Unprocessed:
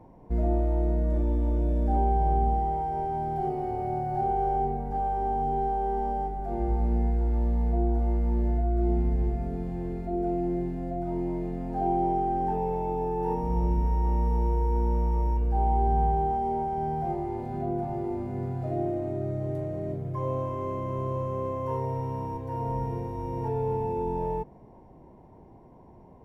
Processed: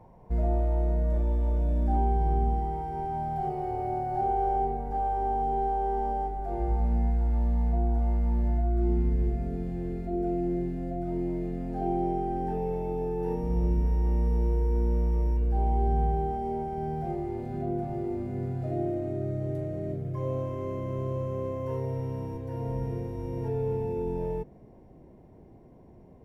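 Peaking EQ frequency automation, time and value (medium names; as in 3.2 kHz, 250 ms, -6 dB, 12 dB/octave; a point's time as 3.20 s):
peaking EQ -11.5 dB 0.51 oct
1.52 s 290 Hz
2.17 s 650 Hz
2.92 s 650 Hz
3.91 s 170 Hz
6.39 s 170 Hz
6.97 s 390 Hz
8.46 s 390 Hz
9.32 s 930 Hz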